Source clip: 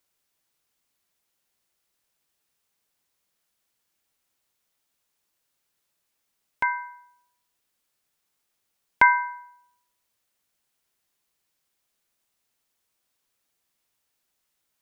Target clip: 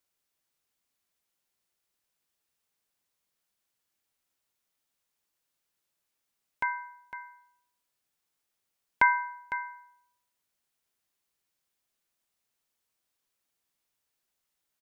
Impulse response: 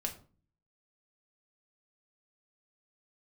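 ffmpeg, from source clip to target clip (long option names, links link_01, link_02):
-af "aecho=1:1:505:0.251,volume=-5.5dB"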